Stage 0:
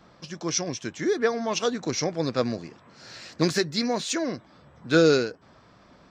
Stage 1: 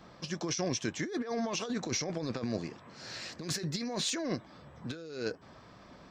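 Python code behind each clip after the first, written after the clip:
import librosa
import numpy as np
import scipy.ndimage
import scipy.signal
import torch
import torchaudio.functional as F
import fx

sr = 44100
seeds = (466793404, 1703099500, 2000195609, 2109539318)

y = fx.notch(x, sr, hz=1400.0, q=19.0)
y = fx.over_compress(y, sr, threshold_db=-31.0, ratio=-1.0)
y = F.gain(torch.from_numpy(y), -4.5).numpy()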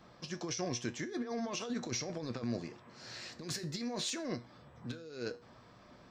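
y = fx.comb_fb(x, sr, f0_hz=120.0, decay_s=0.34, harmonics='all', damping=0.0, mix_pct=60)
y = F.gain(torch.from_numpy(y), 1.5).numpy()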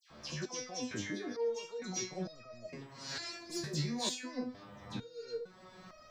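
y = fx.recorder_agc(x, sr, target_db=-30.0, rise_db_per_s=17.0, max_gain_db=30)
y = fx.dispersion(y, sr, late='lows', ms=103.0, hz=2000.0)
y = fx.resonator_held(y, sr, hz=2.2, low_hz=74.0, high_hz=630.0)
y = F.gain(torch.from_numpy(y), 11.0).numpy()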